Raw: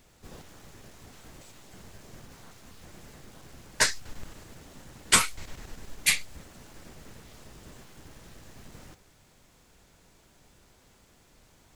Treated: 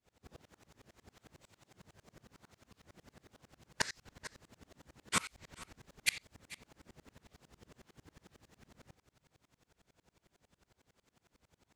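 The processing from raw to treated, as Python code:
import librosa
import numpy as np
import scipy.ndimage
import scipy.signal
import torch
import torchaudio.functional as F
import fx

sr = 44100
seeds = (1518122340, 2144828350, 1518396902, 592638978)

y = scipy.signal.sosfilt(scipy.signal.butter(2, 55.0, 'highpass', fs=sr, output='sos'), x)
y = fx.high_shelf(y, sr, hz=7300.0, db=-8.0)
y = y + 10.0 ** (-16.0 / 20.0) * np.pad(y, (int(434 * sr / 1000.0), 0))[:len(y)]
y = fx.tremolo_decay(y, sr, direction='swelling', hz=11.0, depth_db=30)
y = y * librosa.db_to_amplitude(-2.5)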